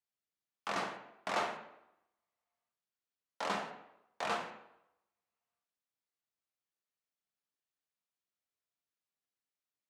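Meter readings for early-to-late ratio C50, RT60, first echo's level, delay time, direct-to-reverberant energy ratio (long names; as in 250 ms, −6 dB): 8.5 dB, 0.85 s, no echo audible, no echo audible, 2.0 dB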